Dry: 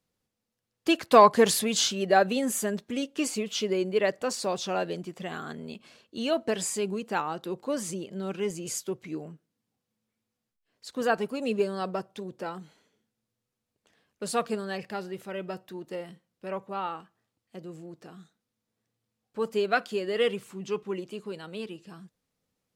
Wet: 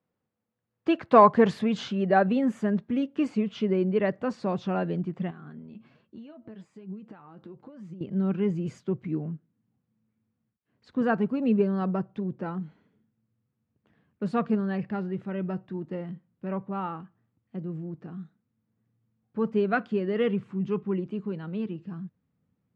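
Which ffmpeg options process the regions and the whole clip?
-filter_complex "[0:a]asettb=1/sr,asplit=3[a][b][c];[a]atrim=end=5.304[d];[b]atrim=start=5.3:end=8.01,asetpts=PTS-STARTPTS,afade=t=in:d=0.004:c=qsin,afade=t=out:st=2.706:d=0.004:c=qsin,acompressor=threshold=-41dB:ratio=12:attack=3.2:release=140:knee=1:detection=peak,flanger=delay=5.1:depth=4.4:regen=51:speed=1.2:shape=sinusoidal[e];[c]atrim=start=8.006[f];[d][e]acrossfade=d=0.004:c1=hsin:c2=qsin[g];[g][f]acrossfade=d=0.004:c1=qsin:c2=hsin,lowpass=1.7k,asubboost=boost=5.5:cutoff=210,highpass=110,volume=1.5dB"

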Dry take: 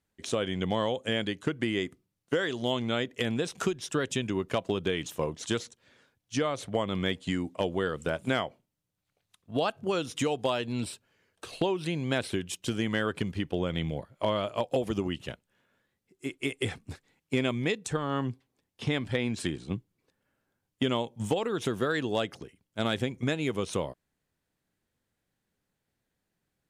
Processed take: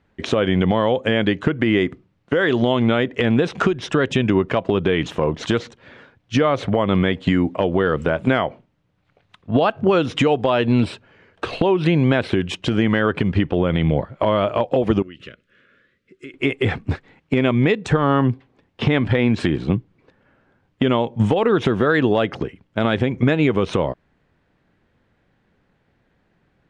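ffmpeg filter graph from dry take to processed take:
-filter_complex "[0:a]asettb=1/sr,asplit=3[a][b][c];[a]atrim=end=15.024[d];[b]atrim=start=15.02:end=16.34,asetpts=PTS-STARTPTS,afade=t=in:d=0.004:c=qsin,afade=t=out:st=1.316:d=0.004:c=qsin,lowshelf=f=320:g=-10,acompressor=threshold=-50dB:ratio=8:attack=3.2:release=140:knee=1:detection=peak,asuperstop=centerf=830:order=4:qfactor=1.1[e];[c]atrim=start=16.336[f];[d][e]acrossfade=d=0.004:c1=hsin:c2=qsin[g];[g][f]acrossfade=d=0.004:c1=qsin:c2=hsin,lowpass=2.4k,acompressor=threshold=-31dB:ratio=6,alimiter=level_in=24.5dB:limit=-1dB:release=50:level=0:latency=1,volume=-5.5dB"

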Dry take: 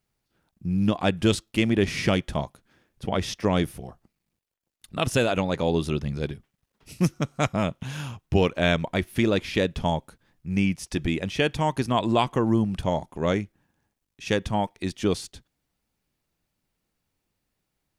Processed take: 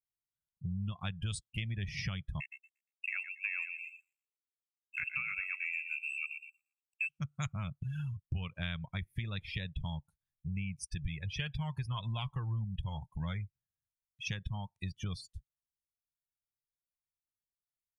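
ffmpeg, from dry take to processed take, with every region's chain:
-filter_complex "[0:a]asettb=1/sr,asplit=3[a][b][c];[a]atrim=end=2.404[d];[b]atrim=start=2.4:end=7.09,asetpts=PTS-STARTPTS,afade=t=in:d=0.004:c=qsin,afade=t=out:st=4.686:d=0.004:c=qsin,lowpass=f=2.4k:t=q:w=0.5098,lowpass=f=2.4k:t=q:w=0.6013,lowpass=f=2.4k:t=q:w=0.9,lowpass=f=2.4k:t=q:w=2.563,afreqshift=-2800,aeval=exprs='sgn(val(0))*max(abs(val(0))-0.0106,0)':c=same,aecho=1:1:117|234|351|468:0.355|0.135|0.0512|0.0195,atrim=end_sample=206829[e];[c]atrim=start=7.086[f];[d][e]acrossfade=d=0.004:c1=hsin:c2=qsin[g];[g][f]acrossfade=d=0.004:c1=qsin:c2=hsin,asettb=1/sr,asplit=3[h][i][j];[h]atrim=end=11.024[k];[i]atrim=start=11.02:end=14.31,asetpts=PTS-STARTPTS,afade=t=in:d=0.004:c=qsin,afade=t=out:st=3.286:d=0.004:c=qsin,flanger=delay=1.2:depth=1.3:regen=-31:speed=1.8:shape=sinusoidal,acontrast=41[l];[j]atrim=start=14.306[m];[k][l]acrossfade=d=0.004:c1=hsin:c2=qsin[n];[n][m]acrossfade=d=0.004:c1=qsin:c2=hsin,afftdn=nr=33:nf=-33,firequalizer=gain_entry='entry(140,0);entry(280,-27);entry(670,-20);entry(1100,-8);entry(9500,9)':delay=0.05:min_phase=1,acompressor=threshold=-43dB:ratio=4,volume=6dB"

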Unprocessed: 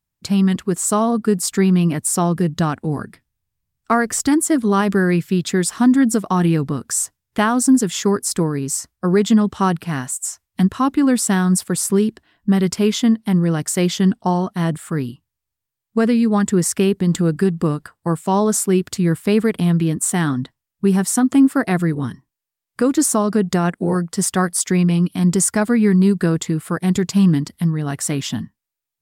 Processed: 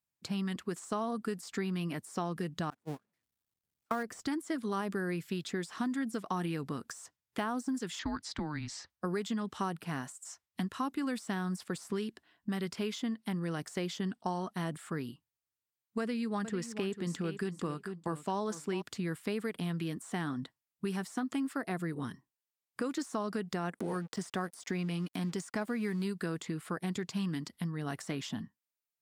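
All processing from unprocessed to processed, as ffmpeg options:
-filter_complex "[0:a]asettb=1/sr,asplit=3[a][b][c];[a]atrim=end=2.704[d];[b]atrim=start=2.7:end=4.03,asetpts=PTS-STARTPTS,afade=t=in:d=0.004:c=qsin,afade=t=out:st=1.326:d=0.004:c=qsin,aeval=exprs='val(0)+0.5*0.0708*sgn(val(0))':c=same,agate=range=-47dB:threshold=-17dB:ratio=16:release=100:detection=peak[e];[c]atrim=start=4.026[f];[d][e]acrossfade=d=0.004:c1=hsin:c2=qsin[g];[g][f]acrossfade=d=0.004:c1=qsin:c2=hsin,asettb=1/sr,asplit=3[h][i][j];[h]atrim=end=7.994[k];[i]atrim=start=7.99:end=8.9,asetpts=PTS-STARTPTS,afade=t=in:d=0.004:c=qsin,afade=t=out:st=0.906:d=0.004:c=qsin,lowpass=f=4.1k:t=q:w=2,equalizer=f=2.1k:t=o:w=0.36:g=8,afreqshift=-150[l];[j]atrim=start=8.896[m];[k][l]acrossfade=d=0.004:c1=hsin:c2=qsin[n];[n][m]acrossfade=d=0.004:c1=qsin:c2=hsin,asettb=1/sr,asplit=3[o][p][q];[o]atrim=end=16.004[r];[p]atrim=start=16:end=18.82,asetpts=PTS-STARTPTS,afade=t=in:d=0.004:c=qsin,afade=t=out:st=2.816:d=0.004:c=qsin,highshelf=f=11k:g=-10,aecho=1:1:444|888:0.224|0.0358,atrim=end_sample=124362[s];[q]atrim=start=18.816[t];[r][s]acrossfade=d=0.004:c1=hsin:c2=qsin[u];[u][t]acrossfade=d=0.004:c1=qsin:c2=hsin,asettb=1/sr,asplit=3[v][w][x];[v]atrim=end=23.794[y];[w]atrim=start=23.79:end=26.05,asetpts=PTS-STARTPTS,afade=t=in:d=0.004:c=qsin,afade=t=out:st=2.256:d=0.004:c=qsin,aeval=exprs='sgn(val(0))*max(abs(val(0))-0.00794,0)':c=same,acompressor=mode=upward:threshold=-17dB:ratio=2.5:attack=3.2:release=140:knee=2.83:detection=peak[z];[x]atrim=start=26.046[aa];[y][z]acrossfade=d=0.004:c1=hsin:c2=qsin[ab];[ab][aa]acrossfade=d=0.004:c1=qsin:c2=hsin,deesser=0.45,highpass=f=230:p=1,acrossover=split=1200|6500[ac][ad][ae];[ac]acompressor=threshold=-25dB:ratio=4[af];[ad]acompressor=threshold=-34dB:ratio=4[ag];[ae]acompressor=threshold=-49dB:ratio=4[ah];[af][ag][ah]amix=inputs=3:normalize=0,volume=-8.5dB"

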